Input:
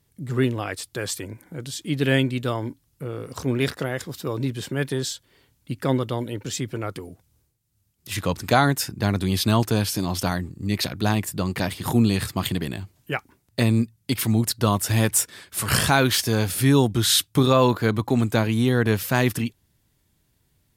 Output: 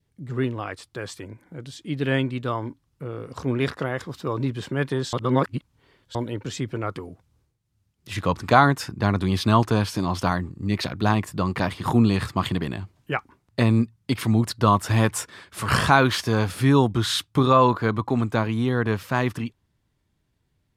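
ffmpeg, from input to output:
ffmpeg -i in.wav -filter_complex "[0:a]asplit=3[link_01][link_02][link_03];[link_01]atrim=end=5.132[link_04];[link_02]atrim=start=5.128:end=6.152,asetpts=PTS-STARTPTS,areverse[link_05];[link_03]atrim=start=6.148[link_06];[link_04][link_05]acrossfade=duration=0.004:curve1=hsin:curve2=hsin[link_07];[link_07][link_06]acrossfade=duration=0.004:curve1=hsin:curve2=hsin,aemphasis=mode=reproduction:type=50fm,dynaudnorm=framelen=240:gausssize=31:maxgain=11.5dB,adynamicequalizer=threshold=0.0126:dfrequency=1100:dqfactor=2.2:tfrequency=1100:tqfactor=2.2:attack=5:release=100:ratio=0.375:range=4:mode=boostabove:tftype=bell,volume=-4dB" out.wav

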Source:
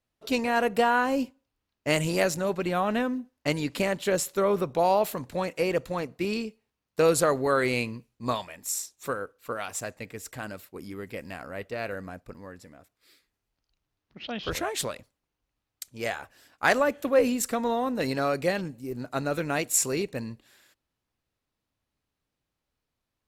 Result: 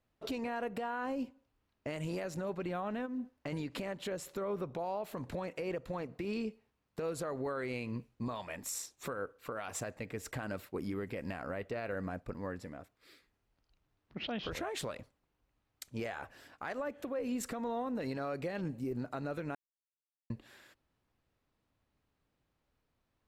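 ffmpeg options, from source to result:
ffmpeg -i in.wav -filter_complex "[0:a]asplit=3[link_01][link_02][link_03];[link_01]afade=type=out:start_time=3.05:duration=0.02[link_04];[link_02]acompressor=threshold=-34dB:ratio=6:attack=3.2:release=140:knee=1:detection=peak,afade=type=in:start_time=3.05:duration=0.02,afade=type=out:start_time=3.52:duration=0.02[link_05];[link_03]afade=type=in:start_time=3.52:duration=0.02[link_06];[link_04][link_05][link_06]amix=inputs=3:normalize=0,asplit=3[link_07][link_08][link_09];[link_07]atrim=end=19.55,asetpts=PTS-STARTPTS,afade=type=out:start_time=19.546:duration=0.004:curve=hsin[link_10];[link_08]atrim=start=19.55:end=20.3,asetpts=PTS-STARTPTS,volume=0[link_11];[link_09]atrim=start=20.3,asetpts=PTS-STARTPTS,afade=type=in:duration=0.004:curve=hsin[link_12];[link_10][link_11][link_12]concat=n=3:v=0:a=1,highshelf=frequency=3700:gain=-11.5,acompressor=threshold=-35dB:ratio=6,alimiter=level_in=9.5dB:limit=-24dB:level=0:latency=1:release=135,volume=-9.5dB,volume=4.5dB" out.wav

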